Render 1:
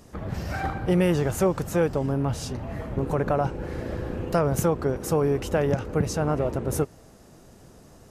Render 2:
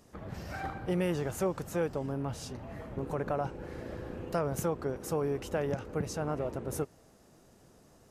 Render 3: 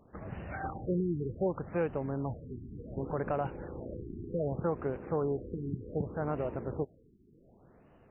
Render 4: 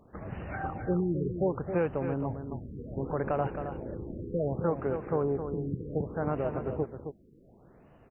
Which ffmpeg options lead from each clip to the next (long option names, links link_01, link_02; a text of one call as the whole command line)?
ffmpeg -i in.wav -af "lowshelf=frequency=130:gain=-5.5,volume=-8dB" out.wav
ffmpeg -i in.wav -af "afftfilt=real='re*lt(b*sr/1024,410*pow(3100/410,0.5+0.5*sin(2*PI*0.66*pts/sr)))':imag='im*lt(b*sr/1024,410*pow(3100/410,0.5+0.5*sin(2*PI*0.66*pts/sr)))':win_size=1024:overlap=0.75" out.wav
ffmpeg -i in.wav -af "aecho=1:1:267:0.398,volume=2.5dB" out.wav